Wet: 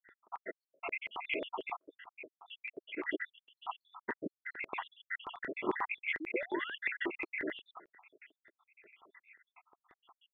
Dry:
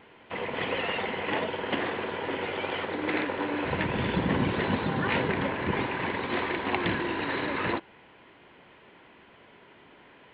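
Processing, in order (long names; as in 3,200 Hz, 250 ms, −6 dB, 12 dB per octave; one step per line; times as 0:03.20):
time-frequency cells dropped at random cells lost 85%
thirty-one-band graphic EQ 500 Hz −11 dB, 1,250 Hz +6 dB, 2,000 Hz +6 dB
0:01.76–0:02.48: downward compressor 6 to 1, threshold −47 dBFS, peak gain reduction 13.5 dB
rotating-speaker cabinet horn 7.5 Hz
Chebyshev low-pass with heavy ripple 3,500 Hz, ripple 6 dB
0:06.20–0:06.75: sound drawn into the spectrogram rise 290–1,800 Hz −44 dBFS
auto-filter high-pass square 5.6 Hz 380–2,000 Hz
level +1 dB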